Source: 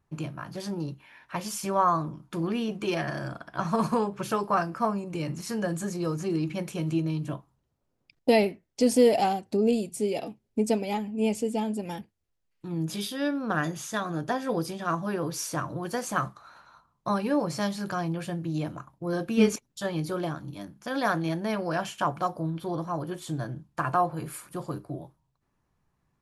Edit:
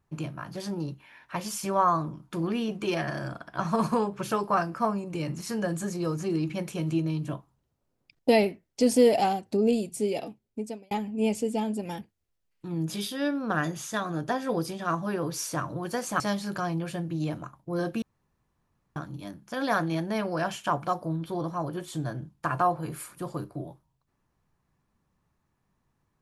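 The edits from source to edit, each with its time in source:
10.13–10.91 s: fade out
16.20–17.54 s: delete
19.36–20.30 s: room tone

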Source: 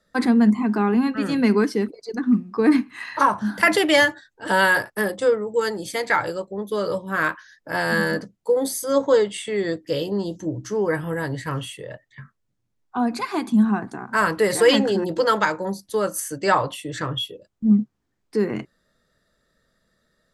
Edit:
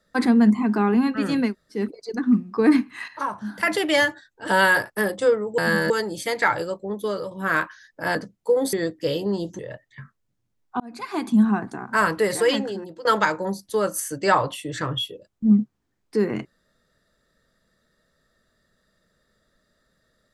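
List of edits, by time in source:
1.47–1.77 s: room tone, crossfade 0.16 s
3.08–4.58 s: fade in linear, from -12 dB
6.69–6.99 s: fade out, to -10 dB
7.83–8.15 s: move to 5.58 s
8.73–9.59 s: delete
10.45–11.79 s: delete
13.00–13.47 s: fade in
14.21–15.25 s: fade out, to -22 dB

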